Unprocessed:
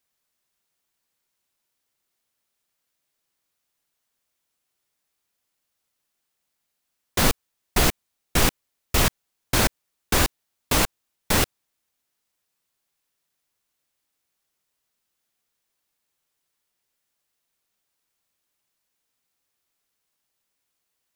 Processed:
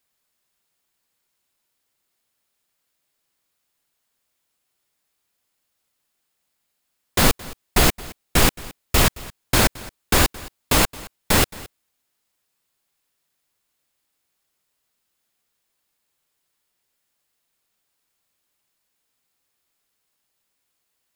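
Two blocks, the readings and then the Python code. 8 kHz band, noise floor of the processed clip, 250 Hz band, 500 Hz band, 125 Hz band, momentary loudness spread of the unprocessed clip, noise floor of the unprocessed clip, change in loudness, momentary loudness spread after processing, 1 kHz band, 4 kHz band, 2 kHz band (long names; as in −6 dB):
+3.0 dB, −75 dBFS, +3.5 dB, +3.5 dB, +3.5 dB, 5 LU, −79 dBFS, +3.5 dB, 21 LU, +3.5 dB, +3.5 dB, +3.5 dB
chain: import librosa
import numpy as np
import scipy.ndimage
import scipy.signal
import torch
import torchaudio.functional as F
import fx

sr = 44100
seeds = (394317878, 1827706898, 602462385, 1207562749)

p1 = fx.notch(x, sr, hz=5900.0, q=18.0)
p2 = p1 + fx.echo_single(p1, sr, ms=220, db=-20.5, dry=0)
y = F.gain(torch.from_numpy(p2), 3.5).numpy()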